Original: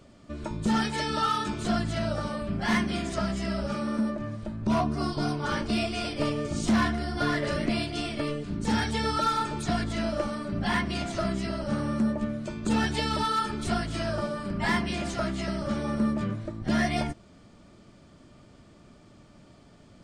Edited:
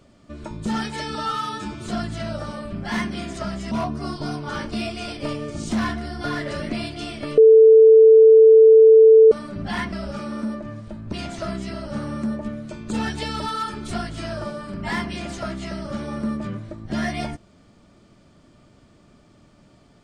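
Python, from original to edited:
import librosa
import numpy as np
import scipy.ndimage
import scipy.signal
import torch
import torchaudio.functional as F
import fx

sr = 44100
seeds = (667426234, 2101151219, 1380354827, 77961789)

y = fx.edit(x, sr, fx.stretch_span(start_s=1.15, length_s=0.47, factor=1.5),
    fx.move(start_s=3.48, length_s=1.2, to_s=10.89),
    fx.bleep(start_s=8.34, length_s=1.94, hz=443.0, db=-6.5), tone=tone)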